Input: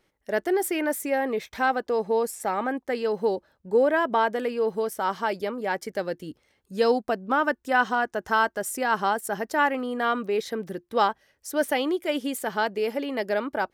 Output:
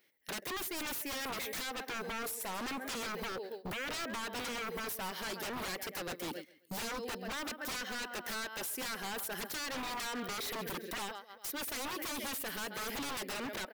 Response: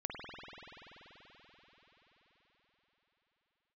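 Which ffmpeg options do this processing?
-filter_complex "[0:a]aemphasis=mode=production:type=riaa,aecho=1:1:133|266|399|532:0.119|0.0559|0.0263|0.0123,asplit=2[a][b];[b]alimiter=limit=-12.5dB:level=0:latency=1:release=140,volume=0dB[c];[a][c]amix=inputs=2:normalize=0,acompressor=threshold=-33dB:ratio=5,equalizer=f=125:t=o:w=1:g=4,equalizer=f=250:t=o:w=1:g=7,equalizer=f=500:t=o:w=1:g=4,equalizer=f=1k:t=o:w=1:g=-4,equalizer=f=2k:t=o:w=1:g=8,equalizer=f=4k:t=o:w=1:g=3,equalizer=f=8k:t=o:w=1:g=-8,agate=range=-15dB:threshold=-41dB:ratio=16:detection=peak,bandreject=f=1.3k:w=22,aeval=exprs='0.02*(abs(mod(val(0)/0.02+3,4)-2)-1)':c=same"

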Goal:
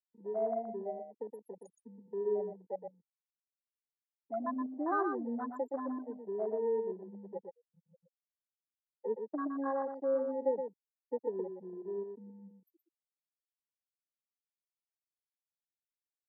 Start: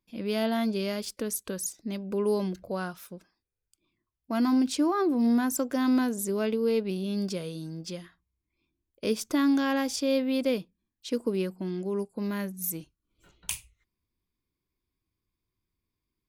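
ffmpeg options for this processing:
-filter_complex "[0:a]afftfilt=real='re*gte(hypot(re,im),0.158)':imag='im*gte(hypot(re,im),0.158)':win_size=1024:overlap=0.75,afwtdn=0.0251,asuperstop=centerf=5100:order=4:qfactor=3.1,acrossover=split=440 2400:gain=0.0891 1 0.178[a][b][c];[a][b][c]amix=inputs=3:normalize=0,asplit=2[d][e];[e]aecho=0:1:120:0.473[f];[d][f]amix=inputs=2:normalize=0,aresample=32000,aresample=44100,acrossover=split=130[g][h];[g]acrusher=bits=4:mix=0:aa=0.000001[i];[i][h]amix=inputs=2:normalize=0"

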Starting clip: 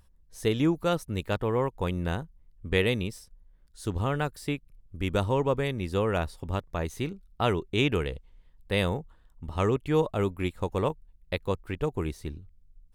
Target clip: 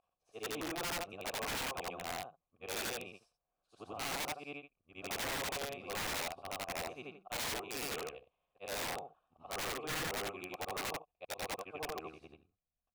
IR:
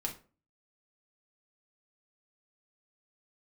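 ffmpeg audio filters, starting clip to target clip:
-filter_complex "[0:a]afftfilt=real='re':imag='-im':win_size=8192:overlap=0.75,asplit=3[a][b][c];[a]bandpass=f=730:t=q:w=8,volume=0dB[d];[b]bandpass=f=1.09k:t=q:w=8,volume=-6dB[e];[c]bandpass=f=2.44k:t=q:w=8,volume=-9dB[f];[d][e][f]amix=inputs=3:normalize=0,aeval=exprs='(mod(119*val(0)+1,2)-1)/119':c=same,volume=8.5dB"

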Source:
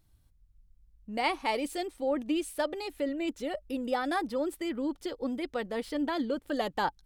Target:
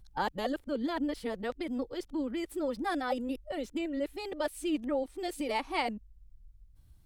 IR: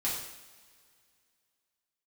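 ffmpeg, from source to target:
-filter_complex "[0:a]areverse,lowshelf=f=140:g=7,asplit=2[a][b];[b]acompressor=threshold=-56dB:ratio=6,volume=-3dB[c];[a][c]amix=inputs=2:normalize=0,volume=-3dB"

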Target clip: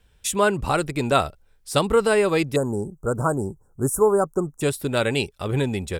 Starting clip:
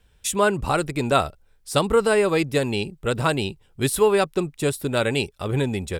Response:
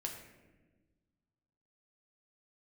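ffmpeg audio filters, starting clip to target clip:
-filter_complex "[0:a]asettb=1/sr,asplit=3[a][b][c];[a]atrim=end=2.564[d];[b]atrim=start=2.56:end=4.61,asetpts=PTS-STARTPTS,afade=t=in:d=0.004:c=qsin,afade=t=out:st=2.046:d=0.004:c=qsin,asuperstop=centerf=3000:order=12:qfactor=0.65[e];[c]atrim=start=4.606[f];[d][e]acrossfade=d=0.004:c1=hsin:c2=qsin[g];[g][f]acrossfade=d=0.004:c1=qsin:c2=hsin"

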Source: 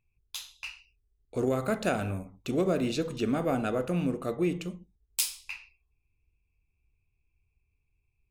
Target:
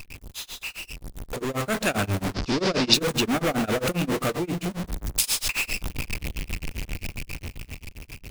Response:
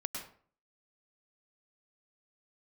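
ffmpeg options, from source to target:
-filter_complex "[0:a]aeval=exprs='val(0)+0.5*0.0355*sgn(val(0))':c=same,bandreject=f=60:t=h:w=6,bandreject=f=120:t=h:w=6,bandreject=f=180:t=h:w=6,tremolo=f=7.5:d=0.98,asettb=1/sr,asplit=3[a][b][c];[a]atrim=end=4.364[d];[b]atrim=start=4.36:end=5.24,asetpts=PTS-STARTPTS,afade=t=in:d=0.004:c=qsin,afade=t=out:st=0.876:d=0.004:c=qsin,acrossover=split=170[e][f];[f]acompressor=threshold=-44dB:ratio=1.5[g];[e][g]amix=inputs=2:normalize=0[h];[c]atrim=start=5.236[i];[d][h]acrossfade=d=0.004:c1=hsin:c2=qsin[j];[j][i]acrossfade=d=0.004:c1=qsin:c2=hsin,acrossover=split=1600[k][l];[k]asoftclip=type=tanh:threshold=-33dB[m];[m][l]amix=inputs=2:normalize=0,dynaudnorm=f=230:g=13:m=13dB,asettb=1/sr,asplit=3[n][o][p];[n]atrim=end=2.344[q];[o]atrim=start=2.34:end=2.94,asetpts=PTS-STARTPTS,afade=t=in:d=0.004:c=qsin,afade=t=out:st=0.596:d=0.004:c=qsin,lowpass=f=5k:t=q:w=4.4[r];[p]atrim=start=2.936[s];[q][r]acrossfade=d=0.004:c1=hsin:c2=qsin[t];[t][s]acrossfade=d=0.004:c1=qsin:c2=hsin,volume=-1dB"

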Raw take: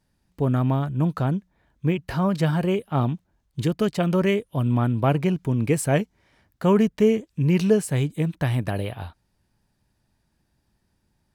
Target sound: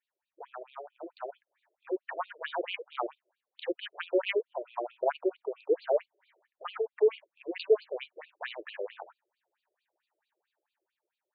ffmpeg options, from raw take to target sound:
-af "aeval=exprs='0.422*(cos(1*acos(clip(val(0)/0.422,-1,1)))-cos(1*PI/2))+0.0266*(cos(5*acos(clip(val(0)/0.422,-1,1)))-cos(5*PI/2))':c=same,dynaudnorm=f=450:g=7:m=11.5dB,afftfilt=real='re*between(b*sr/1024,450*pow(3400/450,0.5+0.5*sin(2*PI*4.5*pts/sr))/1.41,450*pow(3400/450,0.5+0.5*sin(2*PI*4.5*pts/sr))*1.41)':imag='im*between(b*sr/1024,450*pow(3400/450,0.5+0.5*sin(2*PI*4.5*pts/sr))/1.41,450*pow(3400/450,0.5+0.5*sin(2*PI*4.5*pts/sr))*1.41)':win_size=1024:overlap=0.75,volume=-9dB"

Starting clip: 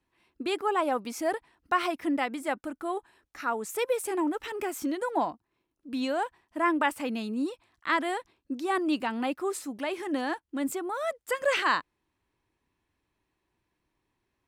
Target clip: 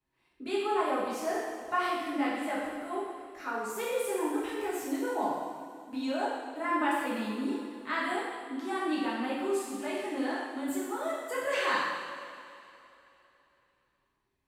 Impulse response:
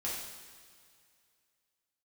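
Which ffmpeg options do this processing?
-filter_complex "[1:a]atrim=start_sample=2205,asetrate=33957,aresample=44100[a];[0:a][a]afir=irnorm=-1:irlink=0,volume=-7.5dB"

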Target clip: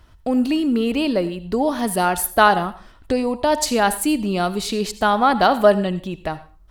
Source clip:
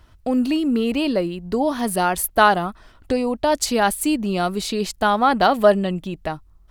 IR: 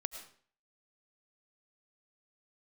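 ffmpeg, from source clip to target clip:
-filter_complex "[0:a]asplit=2[a][b];[1:a]atrim=start_sample=2205,asetrate=61740,aresample=44100[c];[b][c]afir=irnorm=-1:irlink=0,volume=2.5dB[d];[a][d]amix=inputs=2:normalize=0,volume=-4.5dB"

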